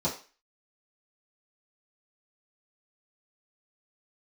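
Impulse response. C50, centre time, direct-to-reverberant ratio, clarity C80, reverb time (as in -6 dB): 9.5 dB, 22 ms, -9.5 dB, 14.5 dB, 0.35 s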